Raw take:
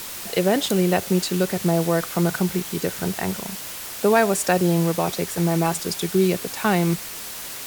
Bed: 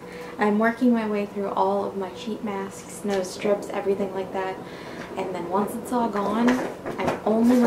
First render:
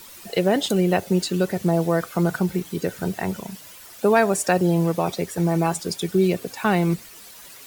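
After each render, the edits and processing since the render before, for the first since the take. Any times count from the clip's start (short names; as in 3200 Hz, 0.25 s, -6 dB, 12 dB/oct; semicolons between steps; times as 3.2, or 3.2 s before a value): denoiser 12 dB, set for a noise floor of -34 dBFS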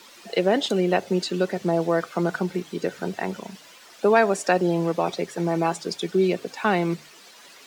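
three-band isolator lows -18 dB, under 190 Hz, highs -16 dB, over 6700 Hz; notches 50/100/150 Hz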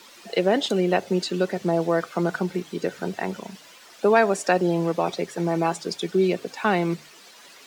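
nothing audible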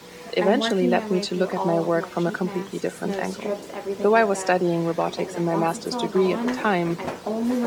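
add bed -5.5 dB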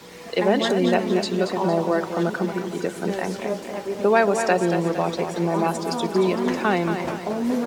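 feedback echo 0.23 s, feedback 46%, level -8 dB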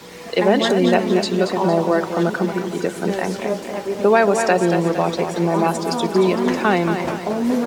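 gain +4 dB; limiter -3 dBFS, peak gain reduction 2 dB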